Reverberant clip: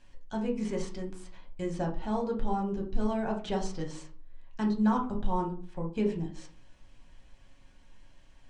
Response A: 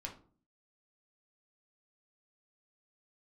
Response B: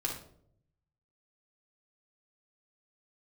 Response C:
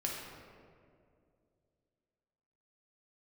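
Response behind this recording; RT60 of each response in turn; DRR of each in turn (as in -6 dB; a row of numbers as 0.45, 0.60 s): A; 0.45, 0.65, 2.3 s; -0.5, -2.5, -2.5 dB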